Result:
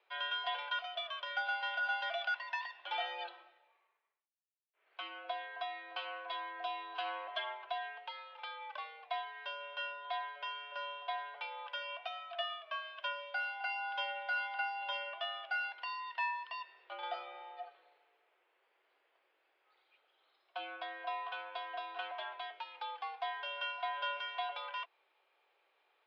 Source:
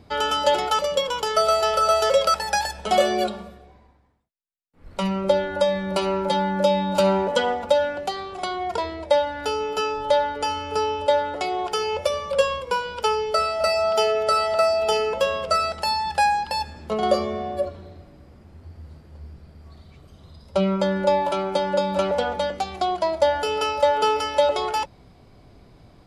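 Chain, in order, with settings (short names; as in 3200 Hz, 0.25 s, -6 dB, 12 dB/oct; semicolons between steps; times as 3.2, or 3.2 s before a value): differentiator; mistuned SSB +140 Hz 230–3000 Hz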